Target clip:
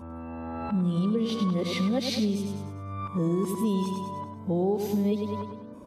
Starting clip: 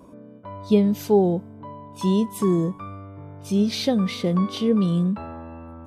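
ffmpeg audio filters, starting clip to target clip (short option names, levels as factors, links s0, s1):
-filter_complex "[0:a]areverse,asplit=2[s0][s1];[s1]aecho=0:1:101|202|303|404|505:0.398|0.183|0.0842|0.0388|0.0178[s2];[s0][s2]amix=inputs=2:normalize=0,acompressor=threshold=0.0708:ratio=6"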